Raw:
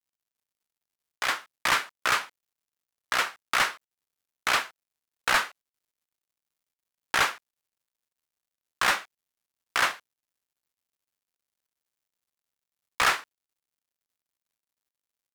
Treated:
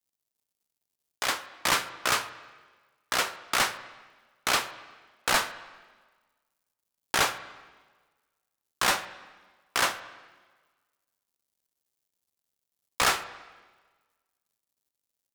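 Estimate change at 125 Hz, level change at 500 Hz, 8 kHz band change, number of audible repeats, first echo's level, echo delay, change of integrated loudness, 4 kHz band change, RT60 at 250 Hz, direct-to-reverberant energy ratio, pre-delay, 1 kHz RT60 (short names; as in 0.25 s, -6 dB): +4.0 dB, +2.5 dB, +4.0 dB, none, none, none, -1.0 dB, +1.0 dB, 1.4 s, 12.0 dB, 4 ms, 1.4 s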